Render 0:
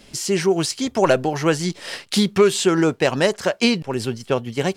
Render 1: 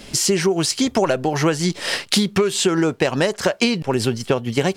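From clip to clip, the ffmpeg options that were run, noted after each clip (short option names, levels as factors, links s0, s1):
-af "acompressor=threshold=0.0708:ratio=10,volume=2.66"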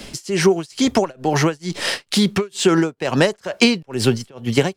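-filter_complex "[0:a]tremolo=f=2.2:d=0.98,acrossover=split=130|1000|5900[s0][s1][s2][s3];[s3]asoftclip=type=tanh:threshold=0.0562[s4];[s0][s1][s2][s4]amix=inputs=4:normalize=0,volume=1.68"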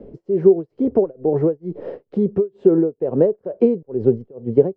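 -af "lowpass=f=460:t=q:w=3.6,volume=0.562"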